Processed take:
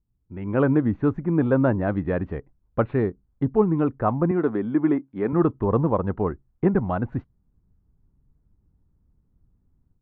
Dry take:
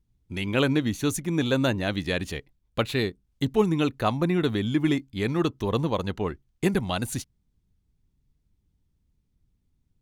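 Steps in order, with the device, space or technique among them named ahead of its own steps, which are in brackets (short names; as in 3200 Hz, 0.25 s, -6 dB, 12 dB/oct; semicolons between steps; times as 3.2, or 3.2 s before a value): 4.31–5.33 HPF 240 Hz 12 dB/oct; action camera in a waterproof case (LPF 1400 Hz 24 dB/oct; AGC gain up to 11.5 dB; gain -5 dB; AAC 96 kbps 24000 Hz)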